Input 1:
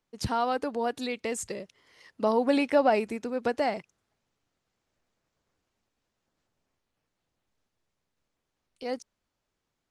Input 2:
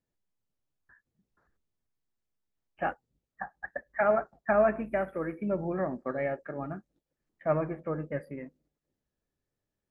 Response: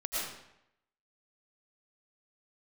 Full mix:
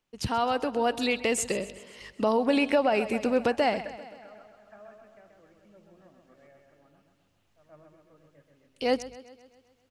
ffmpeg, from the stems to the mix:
-filter_complex "[0:a]volume=0dB,asplit=3[a][b][c];[b]volume=-17dB[d];[1:a]aeval=exprs='val(0)+0.00316*(sin(2*PI*50*n/s)+sin(2*PI*2*50*n/s)/2+sin(2*PI*3*50*n/s)/3+sin(2*PI*4*50*n/s)/4+sin(2*PI*5*50*n/s)/5)':c=same,adelay=100,volume=-12.5dB,asplit=2[e][f];[f]volume=-22dB[g];[c]apad=whole_len=441354[h];[e][h]sidechaingate=range=-33dB:threshold=-56dB:ratio=16:detection=peak[i];[d][g]amix=inputs=2:normalize=0,aecho=0:1:131|262|393|524|655|786|917|1048|1179:1|0.57|0.325|0.185|0.106|0.0602|0.0343|0.0195|0.0111[j];[a][i][j]amix=inputs=3:normalize=0,equalizer=f=2.8k:t=o:w=0.4:g=6.5,dynaudnorm=f=280:g=7:m=7.5dB,alimiter=limit=-14dB:level=0:latency=1:release=357"

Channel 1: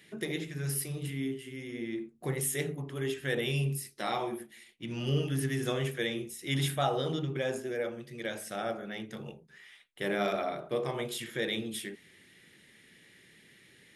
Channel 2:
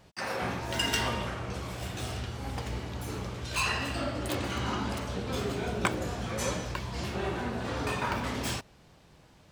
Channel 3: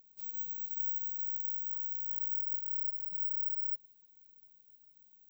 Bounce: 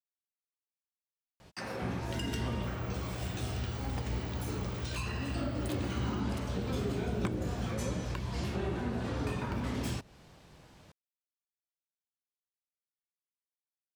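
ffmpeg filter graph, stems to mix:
-filter_complex "[1:a]adelay=1400,volume=1dB[a];[2:a]adelay=2450,volume=-3.5dB,acompressor=threshold=-49dB:ratio=6,volume=0dB[b];[a][b]amix=inputs=2:normalize=0,acrossover=split=390[c][d];[d]acompressor=threshold=-41dB:ratio=5[e];[c][e]amix=inputs=2:normalize=0"

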